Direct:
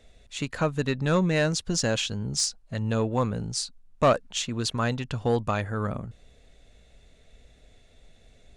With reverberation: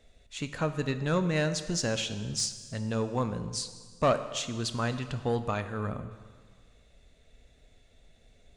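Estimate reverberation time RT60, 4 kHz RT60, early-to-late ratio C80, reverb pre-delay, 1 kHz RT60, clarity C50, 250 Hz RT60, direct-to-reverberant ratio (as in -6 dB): 1.7 s, 1.6 s, 12.5 dB, 4 ms, 1.7 s, 11.5 dB, 1.7 s, 9.5 dB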